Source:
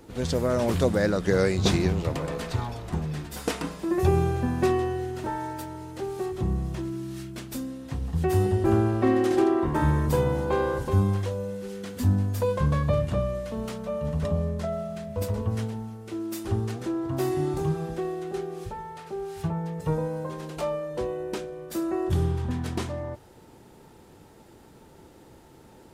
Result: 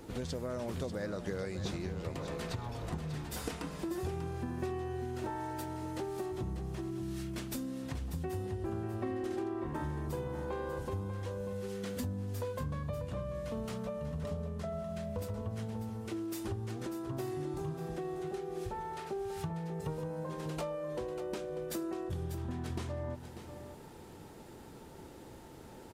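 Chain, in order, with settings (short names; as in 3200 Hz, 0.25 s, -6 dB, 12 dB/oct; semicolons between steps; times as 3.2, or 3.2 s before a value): compressor 6:1, threshold -36 dBFS, peak gain reduction 18 dB; on a send: echo 0.592 s -10 dB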